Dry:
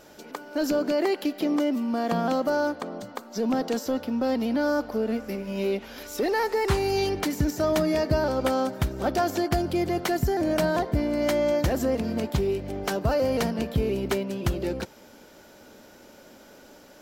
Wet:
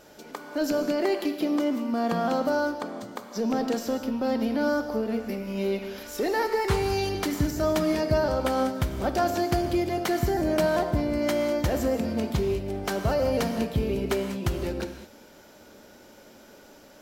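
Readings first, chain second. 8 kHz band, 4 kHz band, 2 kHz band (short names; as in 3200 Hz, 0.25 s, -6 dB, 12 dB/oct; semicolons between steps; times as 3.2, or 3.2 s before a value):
-0.5 dB, -0.5 dB, -0.5 dB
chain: non-linear reverb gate 0.24 s flat, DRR 6.5 dB; gain -1.5 dB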